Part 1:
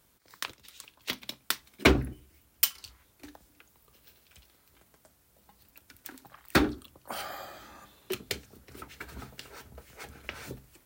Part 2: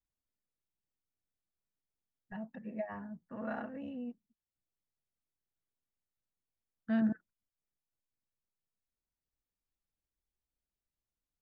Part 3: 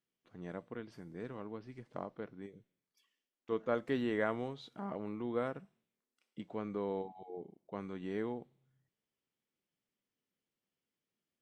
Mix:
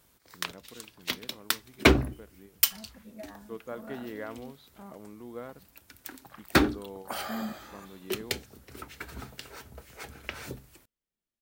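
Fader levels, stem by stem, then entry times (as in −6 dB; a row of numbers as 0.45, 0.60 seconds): +2.0, −6.0, −5.5 decibels; 0.00, 0.40, 0.00 seconds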